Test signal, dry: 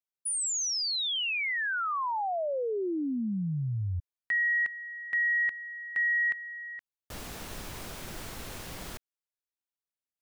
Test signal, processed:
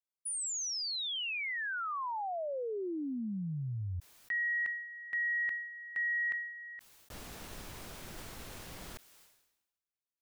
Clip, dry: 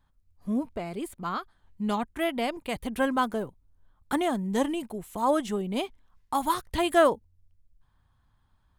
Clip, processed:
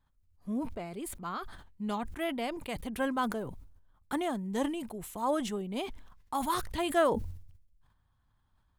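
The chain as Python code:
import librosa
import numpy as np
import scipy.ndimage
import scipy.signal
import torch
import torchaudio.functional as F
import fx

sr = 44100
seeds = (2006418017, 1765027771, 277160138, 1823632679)

y = fx.sustainer(x, sr, db_per_s=61.0)
y = y * 10.0 ** (-6.0 / 20.0)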